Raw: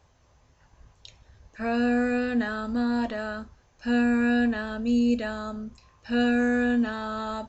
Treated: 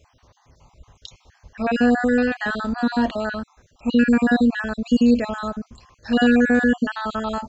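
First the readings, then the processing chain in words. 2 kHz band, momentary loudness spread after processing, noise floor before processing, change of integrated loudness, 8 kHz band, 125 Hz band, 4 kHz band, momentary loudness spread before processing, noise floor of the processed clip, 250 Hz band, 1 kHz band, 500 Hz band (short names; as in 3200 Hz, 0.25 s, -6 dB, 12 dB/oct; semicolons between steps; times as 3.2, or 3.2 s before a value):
+6.0 dB, 12 LU, -62 dBFS, +6.0 dB, n/a, +7.0 dB, +6.5 dB, 12 LU, -62 dBFS, +5.5 dB, +6.0 dB, +6.0 dB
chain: random spectral dropouts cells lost 39%; gain +8 dB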